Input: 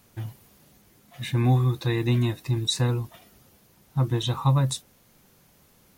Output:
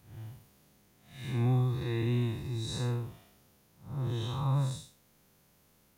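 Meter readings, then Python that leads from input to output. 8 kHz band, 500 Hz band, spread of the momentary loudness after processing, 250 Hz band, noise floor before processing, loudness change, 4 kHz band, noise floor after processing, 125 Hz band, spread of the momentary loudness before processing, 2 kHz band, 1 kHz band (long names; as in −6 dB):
−12.0 dB, −7.5 dB, 16 LU, −7.5 dB, −60 dBFS, −7.5 dB, −12.0 dB, −66 dBFS, −7.0 dB, 15 LU, −9.5 dB, −9.5 dB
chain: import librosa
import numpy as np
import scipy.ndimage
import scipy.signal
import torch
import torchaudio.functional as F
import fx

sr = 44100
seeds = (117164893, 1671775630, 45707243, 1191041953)

y = fx.spec_blur(x, sr, span_ms=184.0)
y = y * 10.0 ** (-5.5 / 20.0)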